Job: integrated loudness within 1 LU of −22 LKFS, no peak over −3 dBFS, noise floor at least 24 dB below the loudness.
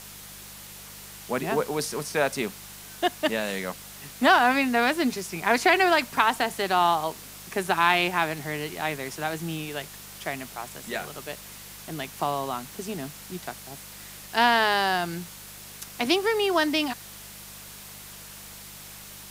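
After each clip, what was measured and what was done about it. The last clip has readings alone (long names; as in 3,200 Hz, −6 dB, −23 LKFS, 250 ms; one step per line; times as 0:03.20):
mains hum 50 Hz; hum harmonics up to 200 Hz; level of the hum −50 dBFS; background noise floor −44 dBFS; target noise floor −49 dBFS; integrated loudness −25.0 LKFS; sample peak −5.0 dBFS; target loudness −22.0 LKFS
→ hum removal 50 Hz, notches 4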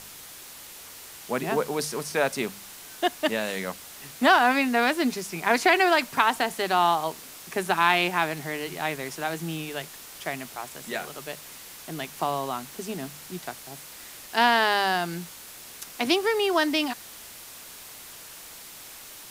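mains hum none found; background noise floor −44 dBFS; target noise floor −49 dBFS
→ broadband denoise 6 dB, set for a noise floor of −44 dBFS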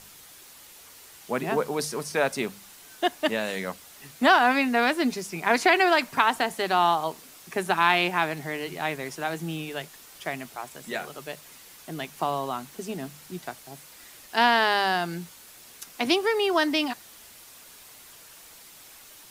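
background noise floor −49 dBFS; target noise floor −50 dBFS
→ broadband denoise 6 dB, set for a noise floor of −49 dBFS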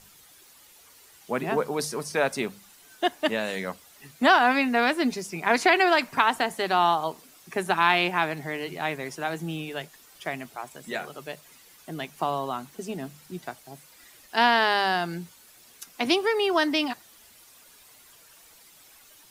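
background noise floor −54 dBFS; integrated loudness −25.0 LKFS; sample peak −5.0 dBFS; target loudness −22.0 LKFS
→ level +3 dB
brickwall limiter −3 dBFS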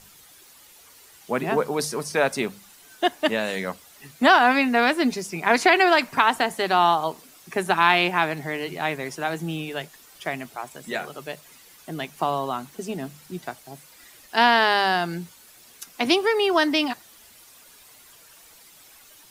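integrated loudness −22.5 LKFS; sample peak −3.0 dBFS; background noise floor −51 dBFS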